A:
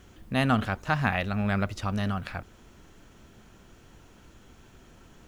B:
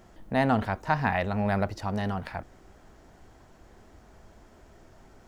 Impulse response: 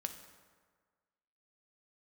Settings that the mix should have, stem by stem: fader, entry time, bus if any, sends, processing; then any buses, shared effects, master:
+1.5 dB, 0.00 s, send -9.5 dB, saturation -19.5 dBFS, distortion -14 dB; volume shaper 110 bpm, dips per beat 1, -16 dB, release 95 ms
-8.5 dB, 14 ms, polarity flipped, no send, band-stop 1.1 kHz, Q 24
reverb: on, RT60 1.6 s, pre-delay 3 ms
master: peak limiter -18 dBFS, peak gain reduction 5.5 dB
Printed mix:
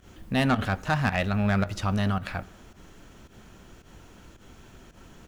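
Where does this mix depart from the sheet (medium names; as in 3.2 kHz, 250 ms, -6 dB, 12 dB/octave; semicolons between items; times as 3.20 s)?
stem B -8.5 dB -> -15.0 dB; master: missing peak limiter -18 dBFS, peak gain reduction 5.5 dB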